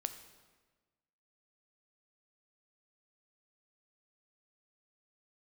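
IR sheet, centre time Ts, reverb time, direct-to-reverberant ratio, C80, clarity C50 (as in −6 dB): 13 ms, 1.3 s, 9.0 dB, 12.5 dB, 11.0 dB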